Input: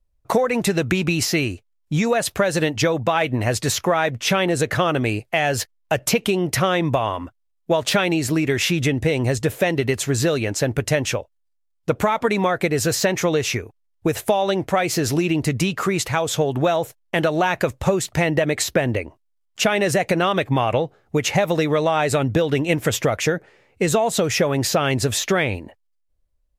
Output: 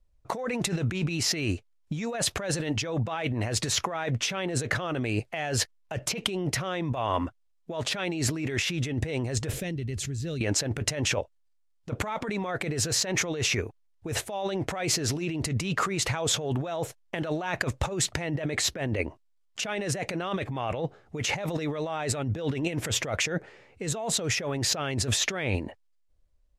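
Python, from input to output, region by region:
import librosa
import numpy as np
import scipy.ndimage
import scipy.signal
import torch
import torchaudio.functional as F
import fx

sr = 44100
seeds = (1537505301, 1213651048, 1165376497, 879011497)

y = fx.chain(x, sr, fx.tone_stack(knobs='10-0-1'),
    fx.env_flatten(amount_pct=100), at=(9.53, 10.41))
y = scipy.signal.sosfilt(scipy.signal.butter(2, 8800.0, 'lowpass', fs=sr, output='sos'), y)
y = fx.over_compress(y, sr, threshold_db=-26.0, ratio=-1.0)
y = F.gain(torch.from_numpy(y), -3.5).numpy()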